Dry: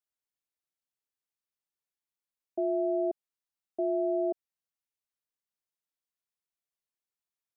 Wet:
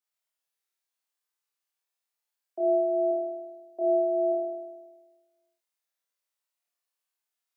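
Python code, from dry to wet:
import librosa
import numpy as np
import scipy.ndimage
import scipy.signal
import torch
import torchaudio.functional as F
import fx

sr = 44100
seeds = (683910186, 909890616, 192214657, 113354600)

p1 = scipy.signal.sosfilt(scipy.signal.butter(2, 530.0, 'highpass', fs=sr, output='sos'), x)
y = p1 + fx.room_flutter(p1, sr, wall_m=4.4, rt60_s=1.3, dry=0)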